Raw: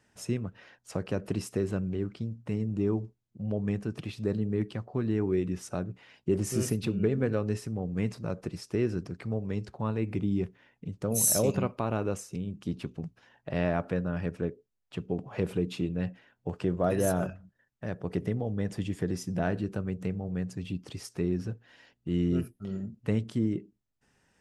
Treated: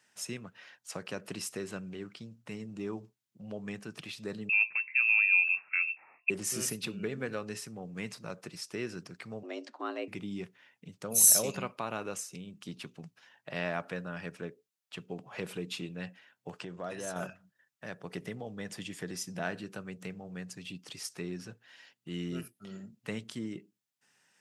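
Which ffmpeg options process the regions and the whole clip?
-filter_complex "[0:a]asettb=1/sr,asplit=3[s0][s1][s2];[s0]atrim=end=4.494[s3];[s1]atrim=start=4.49:end=6.3,asetpts=PTS-STARTPTS,afade=t=in:d=0.004:c=qsin,afade=t=out:st=1.806:d=0.004:c=qsin,lowpass=f=2400:t=q:w=0.5098,lowpass=f=2400:t=q:w=0.6013,lowpass=f=2400:t=q:w=0.9,lowpass=f=2400:t=q:w=2.563,afreqshift=-2800,bandreject=f=348.3:t=h:w=4,bandreject=f=696.6:t=h:w=4,bandreject=f=1044.9:t=h:w=4[s4];[s2]atrim=start=6.296[s5];[s3][s4]acrossfade=d=0.004:c1=hsin:c2=qsin[s6];[s6][s5]acrossfade=d=0.004:c1=qsin:c2=hsin,asettb=1/sr,asplit=3[s7][s8][s9];[s7]atrim=end=9.434[s10];[s8]atrim=start=9.43:end=10.08,asetpts=PTS-STARTPTS,afade=t=in:d=0.004:c=qsin,afade=t=out:st=0.646:d=0.004:c=qsin,lowpass=5700,afreqshift=170[s11];[s9]atrim=start=10.076[s12];[s10][s11]acrossfade=d=0.004:c1=hsin:c2=qsin[s13];[s13][s12]acrossfade=d=0.004:c1=qsin:c2=hsin,asettb=1/sr,asplit=3[s14][s15][s16];[s14]atrim=end=16.604[s17];[s15]atrim=start=16.6:end=17.16,asetpts=PTS-STARTPTS,afade=t=in:d=0.004:c=qsin,afade=t=out:st=0.556:d=0.004:c=qsin,lowpass=f=8500:w=0.5412,lowpass=f=8500:w=1.3066,acompressor=threshold=0.0251:ratio=2:attack=3.2:release=140:knee=1:detection=peak[s18];[s16]atrim=start=17.156[s19];[s17][s18]acrossfade=d=0.004:c1=hsin:c2=qsin[s20];[s20][s19]acrossfade=d=0.004:c1=qsin:c2=hsin,highpass=f=150:w=0.5412,highpass=f=150:w=1.3066,equalizer=f=270:w=0.32:g=-14.5,volume=1.68"

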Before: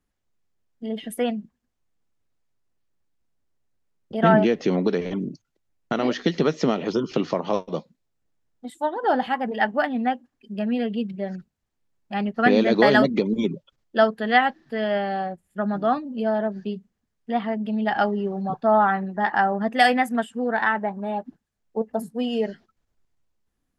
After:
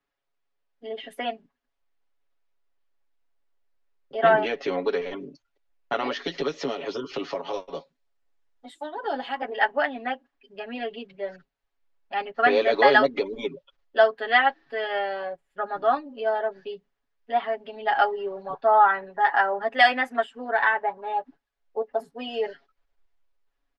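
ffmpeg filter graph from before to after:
-filter_complex "[0:a]asettb=1/sr,asplit=3[s0][s1][s2];[s0]atrim=end=6.154[s3];[s1]atrim=start=6.15:end=9.42,asetpts=PTS-STARTPTS,afade=t=in:d=0.004:c=qsin,afade=t=out:st=3.266:d=0.004:c=qsin,acrossover=split=450|3000[s4][s5][s6];[s5]acompressor=threshold=0.02:ratio=3:attack=3.2:release=140:knee=2.83:detection=peak[s7];[s4][s7][s6]amix=inputs=3:normalize=0,equalizer=f=8800:w=1:g=6.5[s8];[s2]atrim=start=9.416[s9];[s3][s8]acrossfade=d=0.004:c1=hsin:c2=qsin[s10];[s10][s9]acrossfade=d=0.004:c1=qsin:c2=hsin,acrossover=split=400 4800:gain=0.158 1 0.1[s11][s12][s13];[s11][s12][s13]amix=inputs=3:normalize=0,aecho=1:1:7.2:0.94,asubboost=boost=5.5:cutoff=57,volume=0.891"

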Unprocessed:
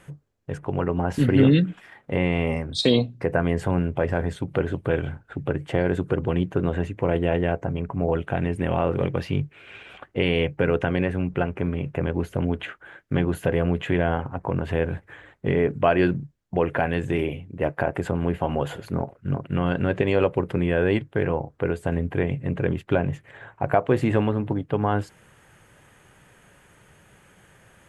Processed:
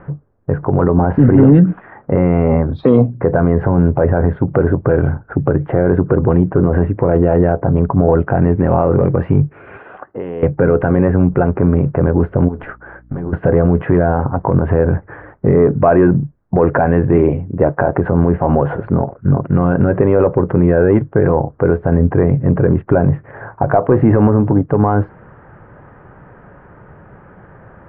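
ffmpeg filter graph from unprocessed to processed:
-filter_complex "[0:a]asettb=1/sr,asplit=3[s0][s1][s2];[s0]atrim=end=9.774[s3];[s1]atrim=start=9.77:end=10.43,asetpts=PTS-STARTPTS,afade=t=in:d=0.004:c=qsin,afade=t=out:st=0.656:d=0.004:c=qsin,bandreject=f=2300:w=7.8,acompressor=threshold=0.00891:ratio=2:attack=3.2:release=140:knee=1:detection=peak,highpass=f=350:p=1[s4];[s2]atrim=start=10.426[s5];[s3][s4]acrossfade=d=0.004:c1=hsin:c2=qsin[s6];[s6][s5]acrossfade=d=0.004:c1=qsin:c2=hsin,asettb=1/sr,asplit=3[s7][s8][s9];[s7]atrim=end=12.484[s10];[s8]atrim=start=12.48:end=13.33,asetpts=PTS-STARTPTS,afade=t=in:d=0.004:c=qsin,afade=t=out:st=0.846:d=0.004:c=qsin,aeval=exprs='val(0)+0.00141*(sin(2*PI*60*n/s)+sin(2*PI*2*60*n/s)/2+sin(2*PI*3*60*n/s)/3+sin(2*PI*4*60*n/s)/4+sin(2*PI*5*60*n/s)/5)':c=same,acompressor=threshold=0.0355:ratio=10:attack=3.2:release=140:knee=1:detection=peak,aeval=exprs='(tanh(14.1*val(0)+0.5)-tanh(0.5))/14.1':c=same[s11];[s9]atrim=start=13.326[s12];[s10][s11]acrossfade=d=0.004:c1=hsin:c2=qsin[s13];[s13][s12]acrossfade=d=0.004:c1=qsin:c2=hsin,acontrast=88,lowpass=f=1400:w=0.5412,lowpass=f=1400:w=1.3066,alimiter=level_in=2.82:limit=0.891:release=50:level=0:latency=1,volume=0.891"

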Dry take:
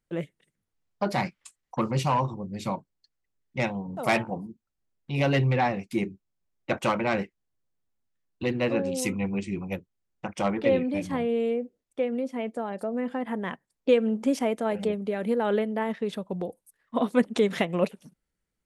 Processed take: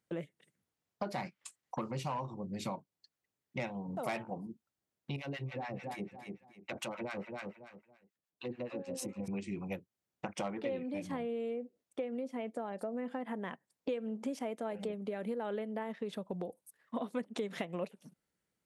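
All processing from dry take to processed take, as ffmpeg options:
-filter_complex "[0:a]asettb=1/sr,asplit=3[s0][s1][s2];[s0]atrim=end=5.164[s3];[s1]atrim=start=5.16:end=9.28,asetpts=PTS-STARTPTS,afade=t=in:d=0.004:c=qsin,afade=t=out:st=4.116:d=0.004:c=qsin,aecho=1:1:279|558|837:0.224|0.0582|0.0151,atrim=end_sample=181692,acompressor=threshold=0.0282:ratio=3:attack=3.2:release=140:knee=1:detection=peak,acrossover=split=840[s4][s5];[s4]aeval=exprs='val(0)*(1-1/2+1/2*cos(2*PI*6.9*n/s))':c=same[s6];[s5]aeval=exprs='val(0)*(1-1/2-1/2*cos(2*PI*6.9*n/s))':c=same[s7];[s6][s7]amix=inputs=2:normalize=0[s8];[s2]atrim=start=9.276[s9];[s3][s8]acrossfade=d=0.004:c1=hsin:c2=qsin[s10];[s10][s9]acrossfade=d=0.004:c1=qsin:c2=hsin,highpass=110,equalizer=f=670:w=1.5:g=2,acompressor=threshold=0.0141:ratio=4"

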